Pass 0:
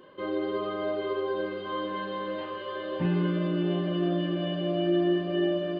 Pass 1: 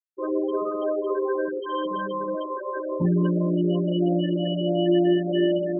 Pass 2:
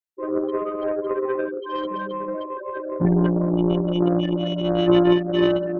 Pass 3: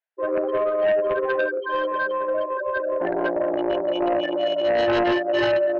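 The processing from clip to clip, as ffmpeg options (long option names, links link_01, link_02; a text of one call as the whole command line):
ffmpeg -i in.wav -af "afftfilt=real='re*gte(hypot(re,im),0.0562)':imag='im*gte(hypot(re,im),0.0562)':win_size=1024:overlap=0.75,areverse,acompressor=mode=upward:threshold=-30dB:ratio=2.5,areverse,volume=5dB" out.wav
ffmpeg -i in.wav -af "aeval=exprs='0.282*(cos(1*acos(clip(val(0)/0.282,-1,1)))-cos(1*PI/2))+0.0501*(cos(3*acos(clip(val(0)/0.282,-1,1)))-cos(3*PI/2))+0.00178*(cos(7*acos(clip(val(0)/0.282,-1,1)))-cos(7*PI/2))':channel_layout=same,volume=6.5dB" out.wav
ffmpeg -i in.wav -af "asoftclip=type=hard:threshold=-8.5dB,highpass=frequency=400:width=0.5412,highpass=frequency=400:width=1.3066,equalizer=frequency=400:width_type=q:width=4:gain=-5,equalizer=frequency=650:width_type=q:width=4:gain=6,equalizer=frequency=1200:width_type=q:width=4:gain=-7,equalizer=frequency=1600:width_type=q:width=4:gain=8,lowpass=frequency=2800:width=0.5412,lowpass=frequency=2800:width=1.3066,aeval=exprs='0.282*sin(PI/2*2.24*val(0)/0.282)':channel_layout=same,volume=-5dB" out.wav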